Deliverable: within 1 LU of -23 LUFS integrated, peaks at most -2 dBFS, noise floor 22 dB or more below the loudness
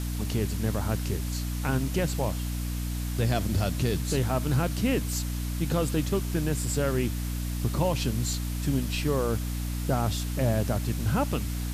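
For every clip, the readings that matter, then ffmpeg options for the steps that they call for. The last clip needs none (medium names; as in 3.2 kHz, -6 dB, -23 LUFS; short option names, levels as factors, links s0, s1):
hum 60 Hz; highest harmonic 300 Hz; hum level -28 dBFS; noise floor -31 dBFS; noise floor target -51 dBFS; loudness -28.5 LUFS; peak level -14.5 dBFS; loudness target -23.0 LUFS
-> -af "bandreject=f=60:t=h:w=4,bandreject=f=120:t=h:w=4,bandreject=f=180:t=h:w=4,bandreject=f=240:t=h:w=4,bandreject=f=300:t=h:w=4"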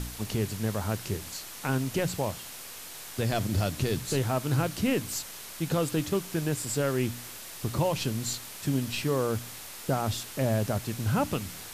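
hum not found; noise floor -43 dBFS; noise floor target -53 dBFS
-> -af "afftdn=nr=10:nf=-43"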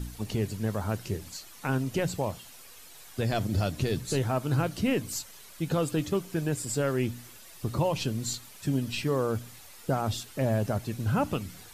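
noise floor -49 dBFS; noise floor target -53 dBFS
-> -af "afftdn=nr=6:nf=-49"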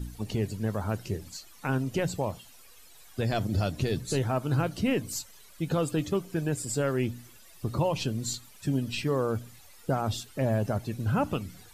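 noise floor -53 dBFS; loudness -30.5 LUFS; peak level -16.5 dBFS; loudness target -23.0 LUFS
-> -af "volume=2.37"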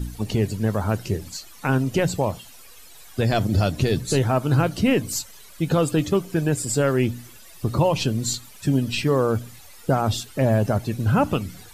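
loudness -23.0 LUFS; peak level -9.0 dBFS; noise floor -45 dBFS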